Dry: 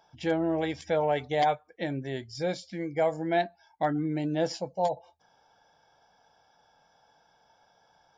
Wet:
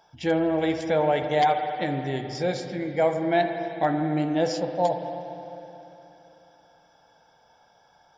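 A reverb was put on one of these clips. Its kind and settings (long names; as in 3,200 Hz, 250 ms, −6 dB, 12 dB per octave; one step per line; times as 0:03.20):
spring reverb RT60 3.3 s, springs 52/56 ms, chirp 30 ms, DRR 5.5 dB
level +3.5 dB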